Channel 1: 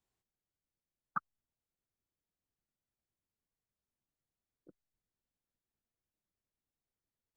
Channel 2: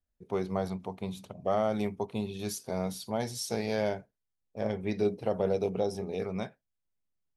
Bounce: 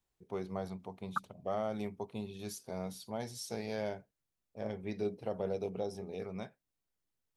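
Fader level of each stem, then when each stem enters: +1.0, -7.5 dB; 0.00, 0.00 s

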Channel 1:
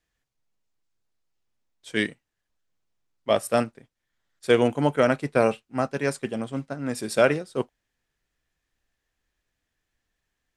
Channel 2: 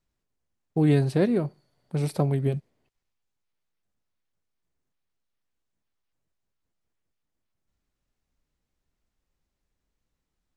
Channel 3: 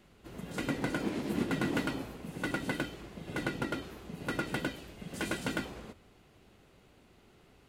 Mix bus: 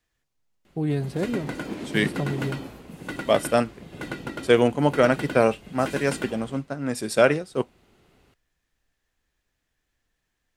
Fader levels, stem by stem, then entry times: +1.5, -5.0, +1.0 dB; 0.00, 0.00, 0.65 s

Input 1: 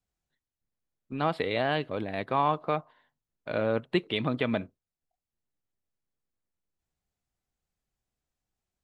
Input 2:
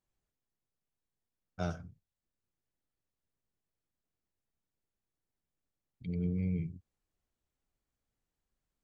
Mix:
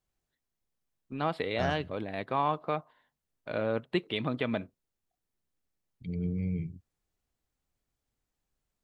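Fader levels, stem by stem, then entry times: -3.0, +1.0 dB; 0.00, 0.00 s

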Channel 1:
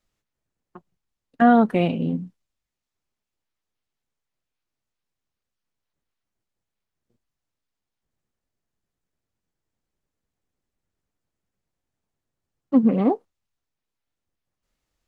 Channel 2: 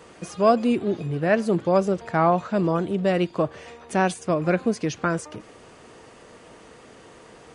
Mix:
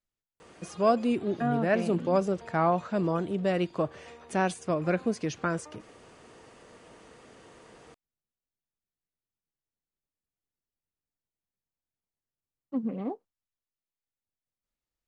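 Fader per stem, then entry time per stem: -14.0, -5.5 dB; 0.00, 0.40 s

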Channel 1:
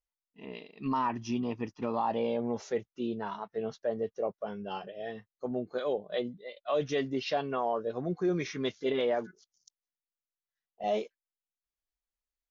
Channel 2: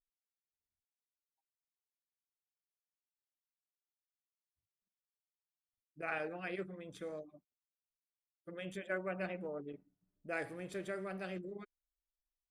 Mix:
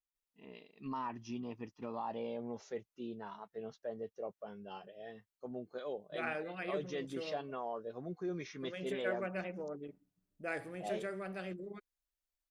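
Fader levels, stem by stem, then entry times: -10.0, 0.0 dB; 0.00, 0.15 s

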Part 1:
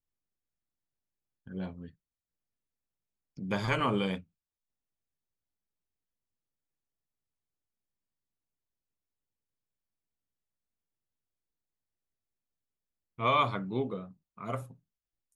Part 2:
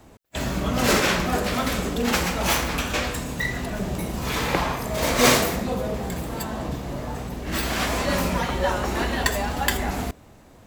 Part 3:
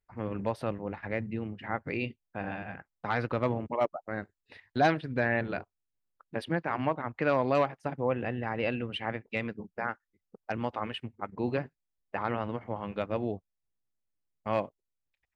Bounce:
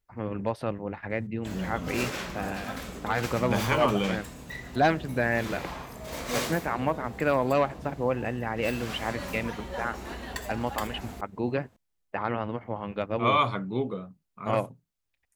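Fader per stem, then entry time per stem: +3.0, -13.5, +2.0 dB; 0.00, 1.10, 0.00 s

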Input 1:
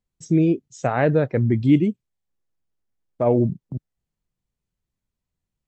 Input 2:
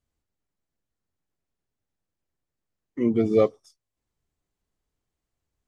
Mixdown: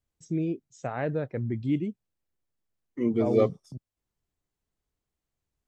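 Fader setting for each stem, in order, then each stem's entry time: -11.0, -3.5 dB; 0.00, 0.00 s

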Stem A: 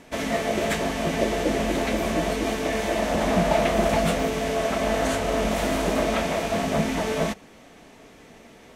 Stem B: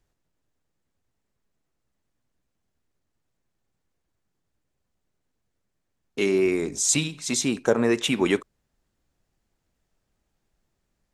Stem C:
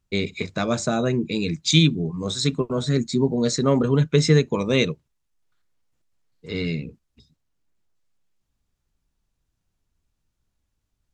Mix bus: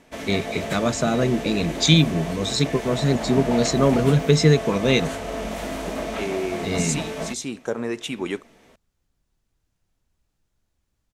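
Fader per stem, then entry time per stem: -5.5, -6.0, +1.0 dB; 0.00, 0.00, 0.15 s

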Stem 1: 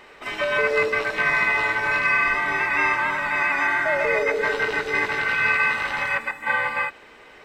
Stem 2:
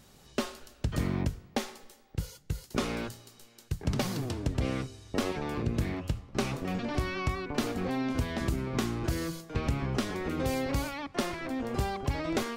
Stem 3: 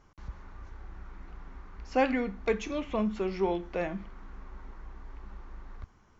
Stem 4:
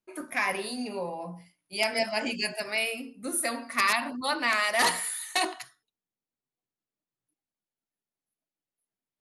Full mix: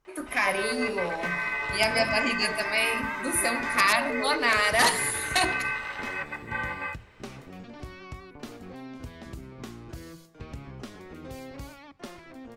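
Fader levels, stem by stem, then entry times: -9.5, -10.5, -13.5, +2.5 dB; 0.05, 0.85, 0.00, 0.00 s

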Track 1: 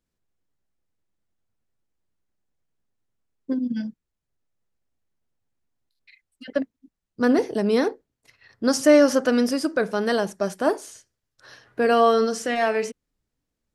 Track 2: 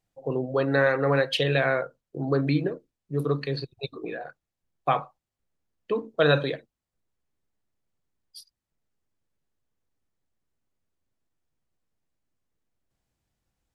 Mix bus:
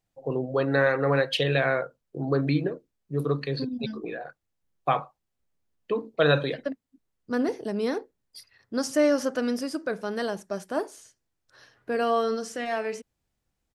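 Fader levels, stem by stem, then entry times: -7.0, -0.5 dB; 0.10, 0.00 s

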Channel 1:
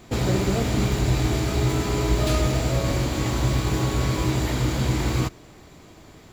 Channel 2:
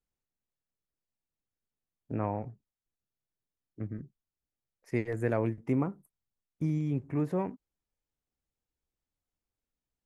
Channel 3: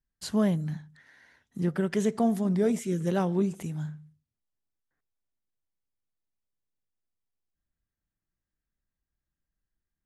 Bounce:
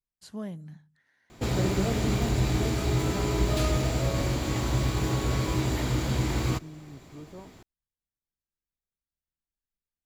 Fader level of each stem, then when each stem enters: -4.0, -14.5, -12.0 dB; 1.30, 0.00, 0.00 s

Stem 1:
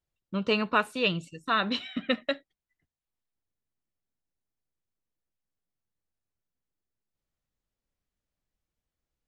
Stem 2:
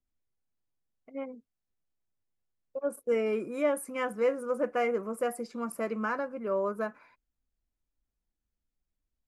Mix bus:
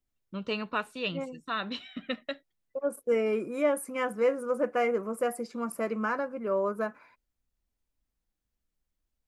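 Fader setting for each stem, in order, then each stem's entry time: -6.5, +1.5 dB; 0.00, 0.00 s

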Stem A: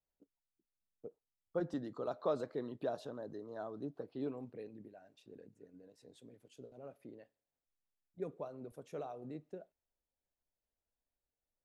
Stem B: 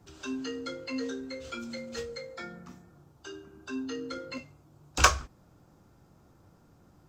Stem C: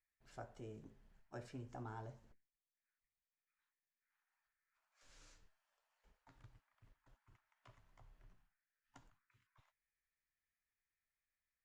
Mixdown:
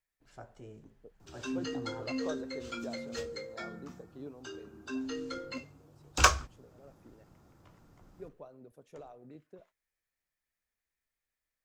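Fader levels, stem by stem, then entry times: -5.5, -1.5, +2.0 dB; 0.00, 1.20, 0.00 s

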